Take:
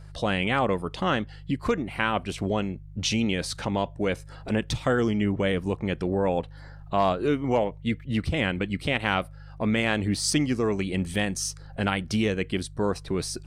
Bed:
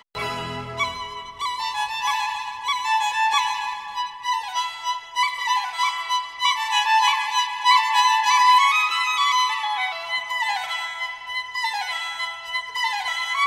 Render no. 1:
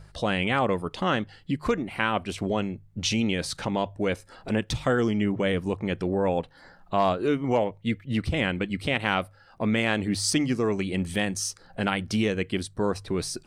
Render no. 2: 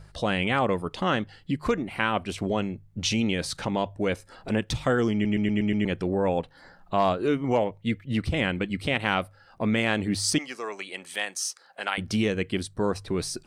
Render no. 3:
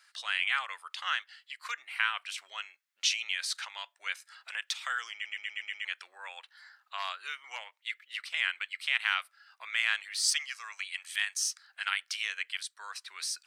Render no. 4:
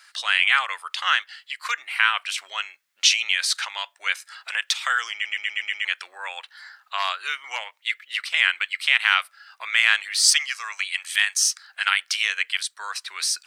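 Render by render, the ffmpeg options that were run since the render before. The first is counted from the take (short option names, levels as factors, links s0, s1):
-af "bandreject=f=50:t=h:w=4,bandreject=f=100:t=h:w=4,bandreject=f=150:t=h:w=4"
-filter_complex "[0:a]asettb=1/sr,asplit=3[s0][s1][s2];[s0]atrim=end=10.384[s3];[s1]atrim=start=10.38:end=11.98,asetpts=PTS-STARTPTS,afade=t=in:d=0.004:c=qsin,afade=t=out:st=1.596:d=0.004:c=qsin,highpass=730[s4];[s2]atrim=start=11.976[s5];[s3][s4]acrossfade=d=0.004:c1=hsin:c2=qsin[s6];[s6][s5]acrossfade=d=0.004:c1=qsin:c2=hsin,asplit=7[s7][s8][s9][s10][s11][s12][s13];[s7]atrim=end=5.252[s14];[s8]atrim=start=5.128:end=5.252[s15];[s9]atrim=start=5.128:end=5.252[s16];[s10]atrim=start=5.128:end=5.252[s17];[s11]atrim=start=5.128:end=5.252[s18];[s12]atrim=start=5.128:end=5.252[s19];[s13]atrim=start=5.848[s20];[s14][s15]acrossfade=d=0.004:c1=hsin:c2=hsin[s21];[s21][s16]acrossfade=d=0.004:c1=hsin:c2=hsin[s22];[s22][s17]acrossfade=d=0.004:c1=hsin:c2=hsin[s23];[s23][s18]acrossfade=d=0.004:c1=hsin:c2=hsin[s24];[s24][s19]acrossfade=d=0.004:c1=hsin:c2=hsin[s25];[s25][s20]acrossfade=d=0.004:c1=hsin:c2=hsin"
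-af "highpass=f=1400:w=0.5412,highpass=f=1400:w=1.3066,equalizer=f=10000:w=1.5:g=-2.5"
-af "volume=3.55,alimiter=limit=0.708:level=0:latency=1"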